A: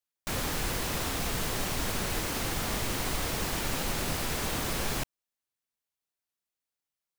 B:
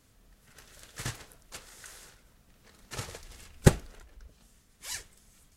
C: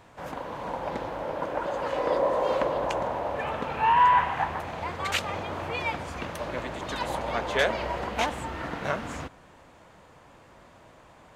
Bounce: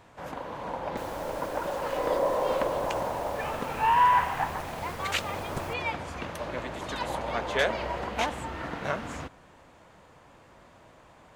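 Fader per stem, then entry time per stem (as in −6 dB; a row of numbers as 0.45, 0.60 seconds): −15.0, −18.5, −1.5 decibels; 0.70, 1.90, 0.00 seconds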